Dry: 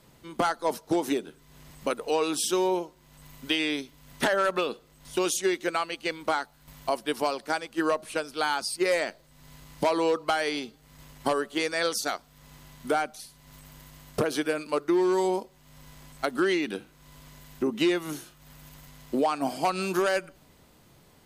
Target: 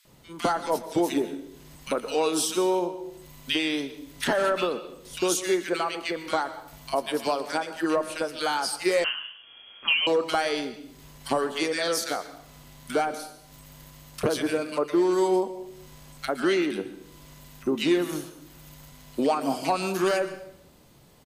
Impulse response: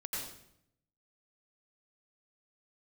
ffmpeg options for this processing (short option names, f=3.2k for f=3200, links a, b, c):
-filter_complex "[0:a]acrossover=split=1600[a][b];[a]adelay=50[c];[c][b]amix=inputs=2:normalize=0,asplit=2[d][e];[1:a]atrim=start_sample=2205,adelay=29[f];[e][f]afir=irnorm=-1:irlink=0,volume=-13dB[g];[d][g]amix=inputs=2:normalize=0,asettb=1/sr,asplit=3[h][i][j];[h]atrim=end=9.044[k];[i]atrim=start=9.04:end=10.07,asetpts=PTS-STARTPTS,afade=t=in:d=0.004:c=qsin,afade=t=out:st=1.026:d=0.004:c=qsin,lowpass=f=2.9k:t=q:w=0.5098,lowpass=f=2.9k:t=q:w=0.6013,lowpass=f=2.9k:t=q:w=0.9,lowpass=f=2.9k:t=q:w=2.563,afreqshift=-3400[l];[j]atrim=start=10.066[m];[k][l]acrossfade=d=0.004:c1=hsin:c2=qsin[n];[n][m]acrossfade=d=0.004:c1=qsin:c2=hsin,volume=1.5dB"